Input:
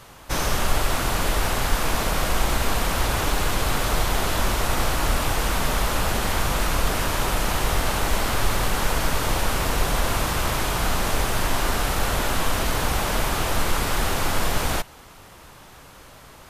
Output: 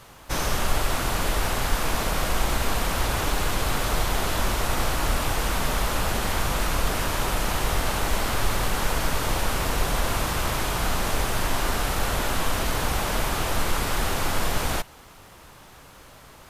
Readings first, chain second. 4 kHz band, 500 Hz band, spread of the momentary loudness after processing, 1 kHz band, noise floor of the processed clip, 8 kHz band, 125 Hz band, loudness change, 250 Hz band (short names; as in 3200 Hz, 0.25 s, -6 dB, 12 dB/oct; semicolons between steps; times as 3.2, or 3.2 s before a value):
-2.0 dB, -2.0 dB, 1 LU, -2.0 dB, -48 dBFS, -2.0 dB, -2.0 dB, -2.0 dB, -2.0 dB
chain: requantised 12-bit, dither triangular; gain -2 dB